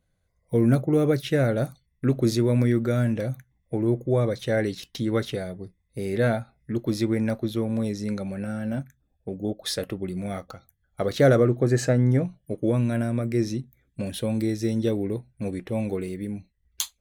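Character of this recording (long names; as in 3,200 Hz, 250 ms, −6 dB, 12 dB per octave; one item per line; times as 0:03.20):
background noise floor −72 dBFS
spectral slope −7.0 dB per octave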